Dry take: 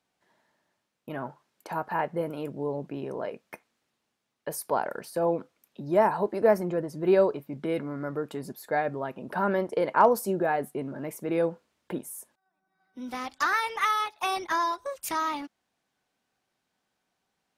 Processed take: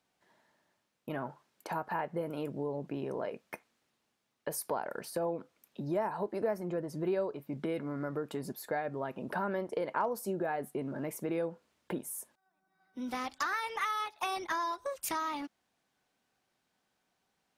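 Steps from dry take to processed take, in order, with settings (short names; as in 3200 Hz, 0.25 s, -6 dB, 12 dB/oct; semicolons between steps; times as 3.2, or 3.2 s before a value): compressor 3:1, threshold -33 dBFS, peak gain reduction 14 dB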